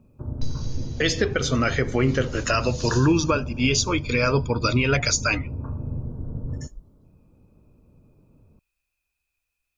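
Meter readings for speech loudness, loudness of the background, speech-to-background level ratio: -22.5 LUFS, -33.0 LUFS, 10.5 dB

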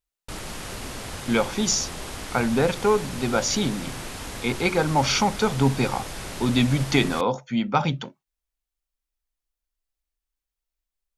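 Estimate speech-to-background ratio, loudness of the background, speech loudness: 11.0 dB, -35.0 LUFS, -24.0 LUFS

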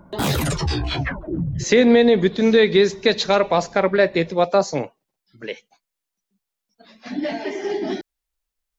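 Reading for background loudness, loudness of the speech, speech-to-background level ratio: -24.5 LUFS, -18.5 LUFS, 6.0 dB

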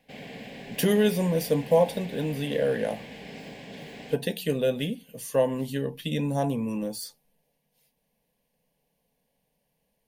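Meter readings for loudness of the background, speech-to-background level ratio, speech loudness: -42.0 LUFS, 15.0 dB, -27.0 LUFS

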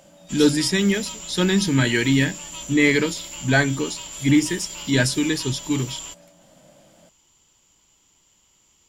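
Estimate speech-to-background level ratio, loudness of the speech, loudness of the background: 12.5 dB, -21.0 LUFS, -33.5 LUFS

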